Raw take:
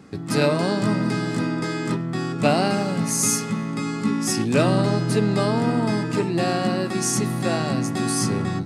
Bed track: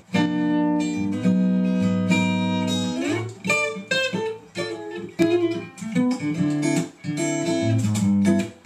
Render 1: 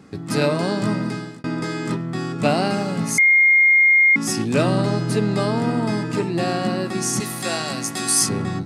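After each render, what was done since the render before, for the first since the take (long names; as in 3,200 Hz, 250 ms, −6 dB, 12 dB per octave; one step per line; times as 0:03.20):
0:00.79–0:01.44: fade out equal-power
0:03.18–0:04.16: beep over 2,130 Hz −10.5 dBFS
0:07.20–0:08.29: spectral tilt +3 dB per octave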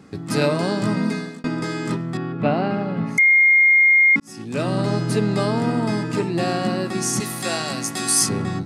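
0:00.96–0:01.48: comb filter 4.3 ms, depth 86%
0:02.17–0:03.18: high-frequency loss of the air 410 metres
0:04.20–0:04.95: fade in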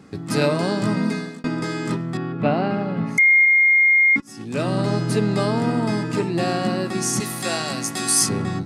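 0:03.45–0:04.41: notch comb filter 180 Hz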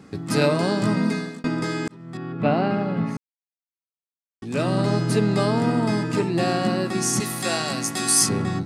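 0:01.88–0:02.53: fade in
0:03.17–0:04.42: silence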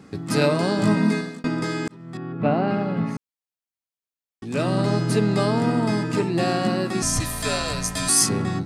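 0:00.77–0:01.21: double-tracking delay 19 ms −5 dB
0:02.17–0:02.68: high-shelf EQ 3,000 Hz −9.5 dB
0:07.02–0:08.09: frequency shifter −100 Hz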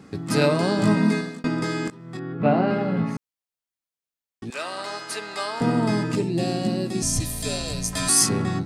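0:01.85–0:03.02: double-tracking delay 22 ms −6 dB
0:04.50–0:05.61: high-pass filter 910 Hz
0:06.15–0:07.93: parametric band 1,300 Hz −14.5 dB 1.5 octaves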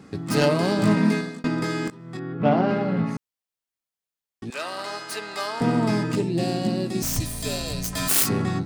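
phase distortion by the signal itself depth 0.13 ms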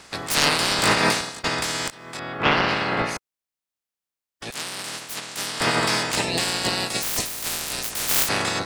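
ceiling on every frequency bin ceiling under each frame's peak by 30 dB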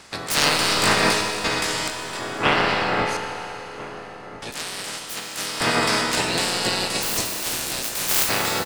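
slap from a distant wall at 230 metres, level −15 dB
four-comb reverb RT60 3.8 s, combs from 26 ms, DRR 5 dB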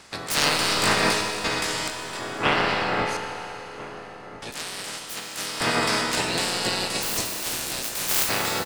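level −2.5 dB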